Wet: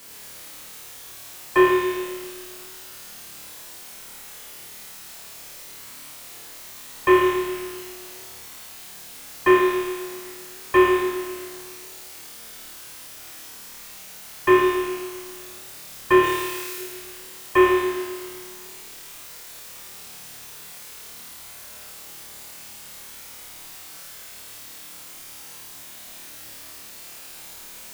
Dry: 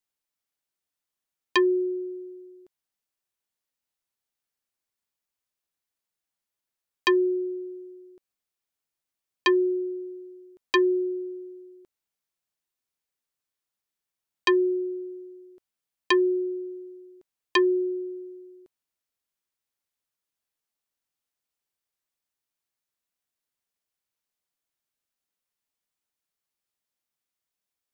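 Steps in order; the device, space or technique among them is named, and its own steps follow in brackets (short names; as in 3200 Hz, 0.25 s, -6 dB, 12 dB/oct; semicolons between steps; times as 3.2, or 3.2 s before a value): army field radio (BPF 350–2900 Hz; CVSD 16 kbps; white noise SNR 18 dB); 16.23–16.78 tilt shelf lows -7 dB, about 1200 Hz; flutter echo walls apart 4.6 m, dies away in 1.2 s; gain +6.5 dB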